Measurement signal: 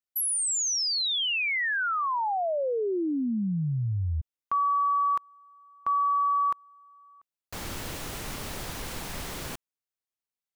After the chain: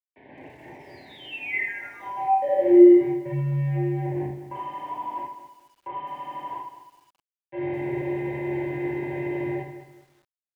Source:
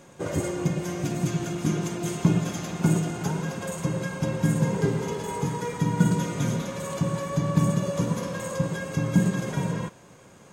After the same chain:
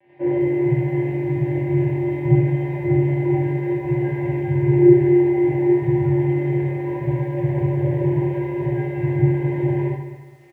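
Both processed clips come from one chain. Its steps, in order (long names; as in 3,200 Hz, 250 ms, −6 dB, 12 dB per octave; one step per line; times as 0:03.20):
comb filter 1.9 ms, depth 86%
in parallel at −3 dB: downward compressor 12 to 1, threshold −31 dBFS
on the sum: flanger 0.62 Hz, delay 4.4 ms, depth 8.8 ms, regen −7%
phases set to zero 212 Hz
bit-depth reduction 6 bits, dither none
ambience of single reflections 26 ms −17 dB, 77 ms −7.5 dB
reverb whose tail is shaped and stops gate 100 ms flat, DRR −7 dB
single-sideband voice off tune −72 Hz 190–2,000 Hz
Butterworth band-reject 1,300 Hz, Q 1.2
feedback echo at a low word length 208 ms, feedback 35%, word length 9 bits, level −11.5 dB
level +1.5 dB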